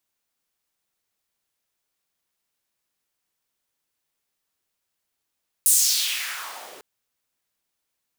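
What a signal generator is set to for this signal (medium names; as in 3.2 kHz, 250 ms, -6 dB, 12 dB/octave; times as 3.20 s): swept filtered noise pink, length 1.15 s highpass, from 9.8 kHz, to 420 Hz, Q 2.4, exponential, gain ramp -33 dB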